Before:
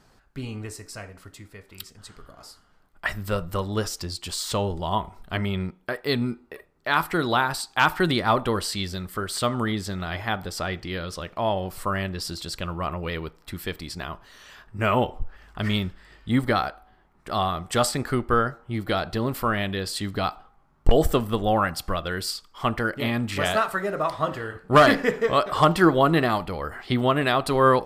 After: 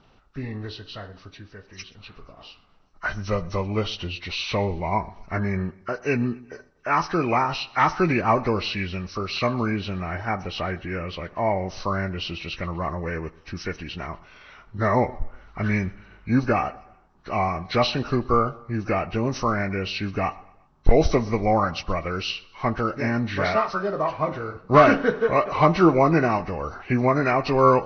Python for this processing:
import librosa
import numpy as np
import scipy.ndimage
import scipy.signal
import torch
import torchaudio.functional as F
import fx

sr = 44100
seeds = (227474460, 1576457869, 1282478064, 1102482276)

y = fx.freq_compress(x, sr, knee_hz=1000.0, ratio=1.5)
y = fx.echo_feedback(y, sr, ms=123, feedback_pct=45, wet_db=-23)
y = F.gain(torch.from_numpy(y), 1.5).numpy()